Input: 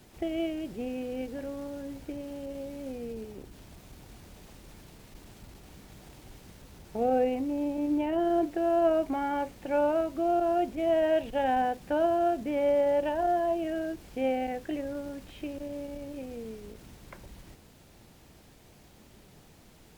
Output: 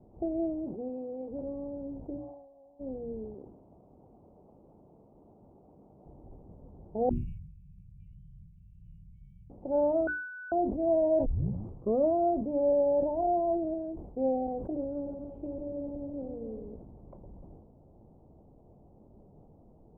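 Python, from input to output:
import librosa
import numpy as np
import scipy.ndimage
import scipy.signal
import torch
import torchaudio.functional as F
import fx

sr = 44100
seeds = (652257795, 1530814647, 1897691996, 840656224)

y = fx.highpass(x, sr, hz=fx.line((0.64, 180.0), (1.29, 580.0)), slope=6, at=(0.64, 1.29), fade=0.02)
y = fx.formant_cascade(y, sr, vowel='a', at=(2.16, 2.79), fade=0.02)
y = fx.highpass(y, sr, hz=290.0, slope=6, at=(3.34, 6.06))
y = fx.brickwall_bandstop(y, sr, low_hz=190.0, high_hz=2100.0, at=(7.09, 9.5))
y = fx.bessel_lowpass(y, sr, hz=1700.0, order=2, at=(12.72, 13.17))
y = fx.reverse_delay_fb(y, sr, ms=142, feedback_pct=63, wet_db=-8, at=(14.82, 16.75))
y = fx.edit(y, sr, fx.bleep(start_s=10.07, length_s=0.45, hz=1490.0, db=-8.0),
    fx.tape_start(start_s=11.26, length_s=0.87),
    fx.clip_gain(start_s=13.74, length_s=0.43, db=-3.5), tone=tone)
y = scipy.signal.sosfilt(scipy.signal.cheby2(4, 40, 1600.0, 'lowpass', fs=sr, output='sos'), y)
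y = fx.hum_notches(y, sr, base_hz=60, count=6)
y = fx.sustainer(y, sr, db_per_s=56.0)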